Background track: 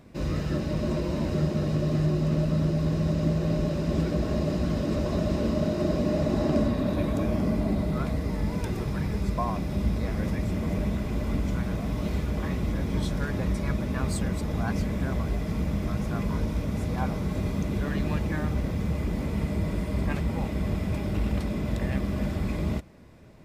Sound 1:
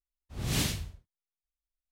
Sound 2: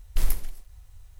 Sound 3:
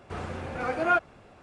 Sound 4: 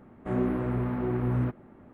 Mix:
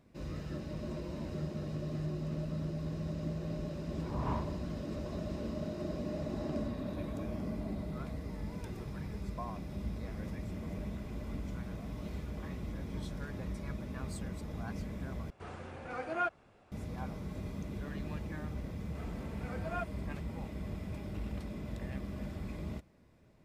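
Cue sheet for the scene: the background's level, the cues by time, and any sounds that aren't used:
background track -12.5 dB
3.71 add 1 -7 dB + synth low-pass 1000 Hz, resonance Q 9
15.3 replace with 3 -10 dB
18.85 add 3 -16 dB + comb 4.5 ms
not used: 2, 4

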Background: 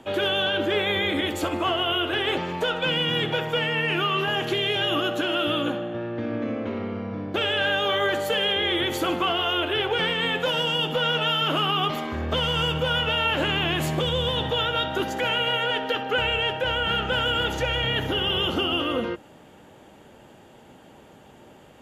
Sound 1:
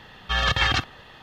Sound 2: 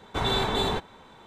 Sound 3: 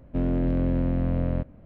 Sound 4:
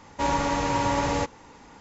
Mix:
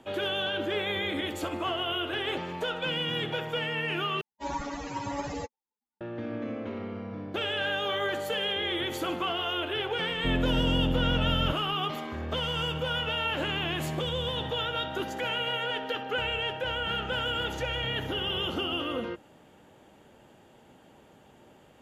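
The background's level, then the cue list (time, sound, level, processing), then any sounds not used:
background -6.5 dB
4.21 replace with 4 -4 dB + per-bin expansion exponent 3
10.1 add 3 -3 dB
not used: 1, 2

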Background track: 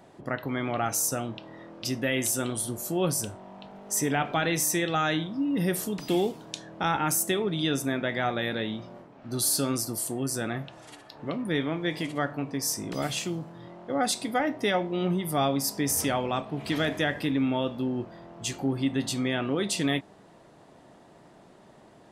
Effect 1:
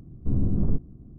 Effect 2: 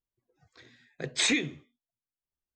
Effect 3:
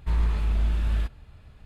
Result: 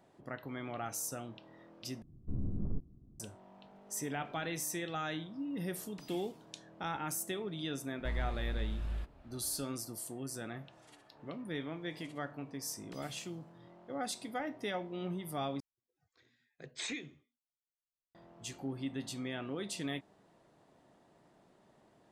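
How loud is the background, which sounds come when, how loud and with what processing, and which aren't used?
background track -12 dB
2.02 replace with 1 -13 dB
7.98 add 3 -13 dB
15.6 replace with 2 -14.5 dB

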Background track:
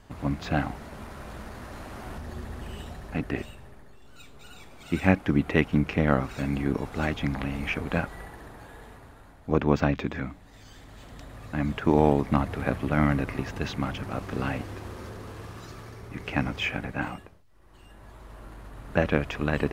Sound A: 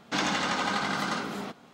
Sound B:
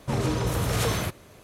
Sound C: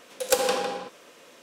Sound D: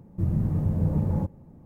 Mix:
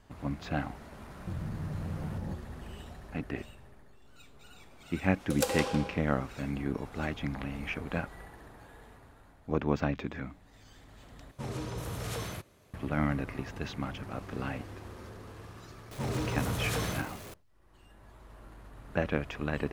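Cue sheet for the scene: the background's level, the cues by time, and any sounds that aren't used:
background track -6.5 dB
1.09 add D -2.5 dB + compressor, threshold -31 dBFS
5.1 add C -8 dB
11.31 replace with B -11.5 dB
15.91 add B -8.5 dB + zero-crossing step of -33.5 dBFS
not used: A

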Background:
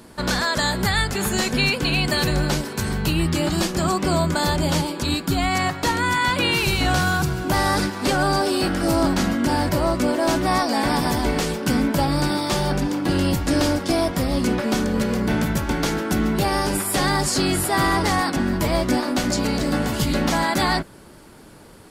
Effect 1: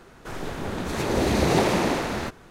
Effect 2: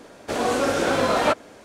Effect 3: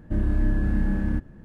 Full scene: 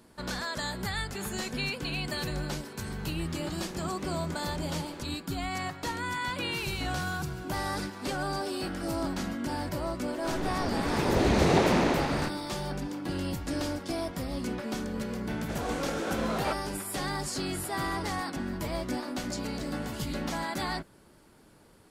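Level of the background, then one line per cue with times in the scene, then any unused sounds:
background -12.5 dB
2.73 add 1 -13 dB + compressor, threshold -31 dBFS
9.99 add 1 -2 dB + air absorption 52 m
15.2 add 2 -12 dB
not used: 3

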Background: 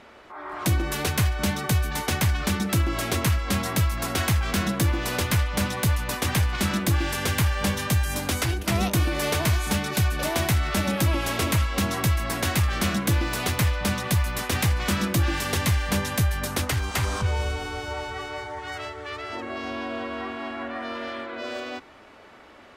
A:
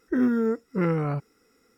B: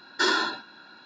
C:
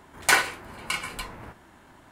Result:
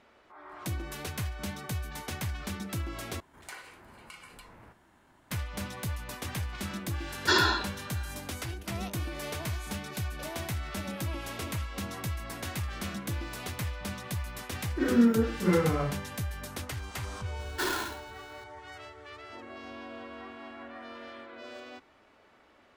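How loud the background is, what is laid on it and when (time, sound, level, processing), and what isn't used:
background -12 dB
3.2 replace with C -9.5 dB + compressor 2.5:1, threshold -39 dBFS
7.08 add B -0.5 dB
14.65 add A -9 dB + Schroeder reverb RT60 0.42 s, combs from 30 ms, DRR -8.5 dB
17.39 add B -12 dB + half-waves squared off

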